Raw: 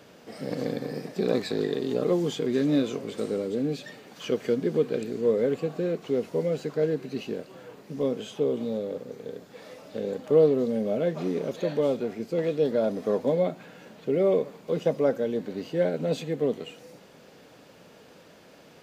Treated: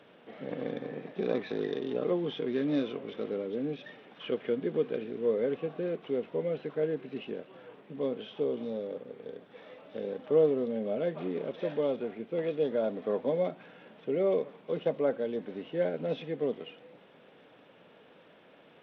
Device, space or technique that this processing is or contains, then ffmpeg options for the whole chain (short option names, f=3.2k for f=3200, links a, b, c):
Bluetooth headset: -af "highpass=f=210:p=1,aresample=8000,aresample=44100,volume=-4dB" -ar 32000 -c:a sbc -b:a 64k